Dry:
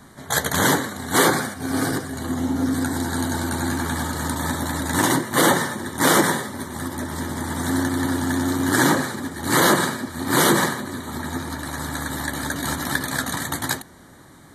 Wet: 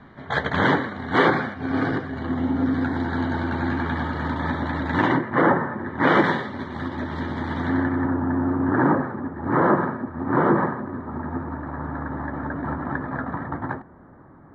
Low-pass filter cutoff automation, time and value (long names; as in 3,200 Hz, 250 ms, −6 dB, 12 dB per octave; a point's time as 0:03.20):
low-pass filter 24 dB per octave
0:04.99 3,000 Hz
0:05.63 1,500 Hz
0:06.31 3,400 Hz
0:07.56 3,400 Hz
0:08.16 1,400 Hz